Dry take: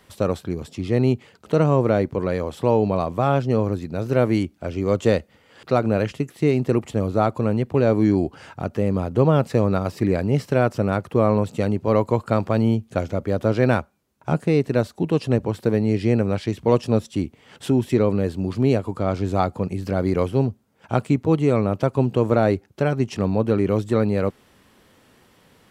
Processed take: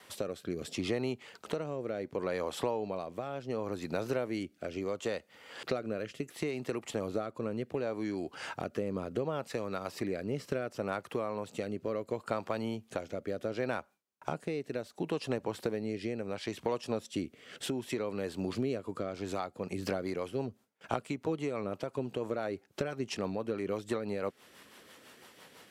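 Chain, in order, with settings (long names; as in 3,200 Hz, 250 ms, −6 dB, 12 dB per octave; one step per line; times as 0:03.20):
noise gate with hold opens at −51 dBFS
high-pass filter 650 Hz 6 dB per octave
downward compressor 6 to 1, threshold −35 dBFS, peak gain reduction 17 dB
rotating-speaker cabinet horn 0.7 Hz, later 6 Hz, at 0:19.09
level +5.5 dB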